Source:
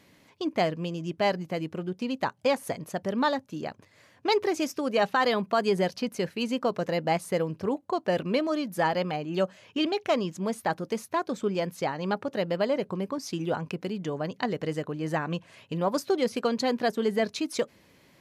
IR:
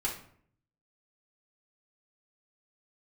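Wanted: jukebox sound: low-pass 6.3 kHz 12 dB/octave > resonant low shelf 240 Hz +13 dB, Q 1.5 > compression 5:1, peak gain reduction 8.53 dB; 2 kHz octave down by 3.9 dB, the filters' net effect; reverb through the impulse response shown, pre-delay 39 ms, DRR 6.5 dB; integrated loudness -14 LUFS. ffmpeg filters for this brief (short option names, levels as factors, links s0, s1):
-filter_complex "[0:a]equalizer=f=2000:t=o:g=-4.5,asplit=2[s0][s1];[1:a]atrim=start_sample=2205,adelay=39[s2];[s1][s2]afir=irnorm=-1:irlink=0,volume=0.282[s3];[s0][s3]amix=inputs=2:normalize=0,lowpass=6300,lowshelf=f=240:t=q:w=1.5:g=13,acompressor=threshold=0.0794:ratio=5,volume=4.47"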